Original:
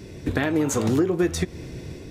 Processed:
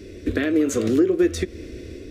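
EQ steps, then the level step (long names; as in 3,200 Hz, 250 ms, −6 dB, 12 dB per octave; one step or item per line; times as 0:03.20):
high-shelf EQ 4,000 Hz −8 dB
phaser with its sweep stopped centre 360 Hz, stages 4
+4.0 dB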